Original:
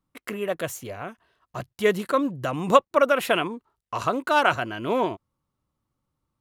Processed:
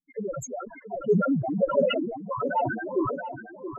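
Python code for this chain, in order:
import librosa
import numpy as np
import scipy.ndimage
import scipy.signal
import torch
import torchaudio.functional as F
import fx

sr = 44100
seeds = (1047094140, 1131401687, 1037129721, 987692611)

p1 = fx.bass_treble(x, sr, bass_db=-8, treble_db=-10)
p2 = fx.fuzz(p1, sr, gain_db=36.0, gate_db=-42.0)
p3 = p1 + (p2 * 10.0 ** (-5.0 / 20.0))
p4 = fx.tremolo_shape(p3, sr, shape='saw_down', hz=0.8, depth_pct=30)
p5 = fx.env_flanger(p4, sr, rest_ms=11.4, full_db=-13.5)
p6 = fx.spec_topn(p5, sr, count=2)
p7 = fx.stretch_grains(p6, sr, factor=0.59, grain_ms=89.0)
p8 = p7 + fx.echo_feedback(p7, sr, ms=676, feedback_pct=35, wet_db=-11, dry=0)
y = fx.sustainer(p8, sr, db_per_s=57.0)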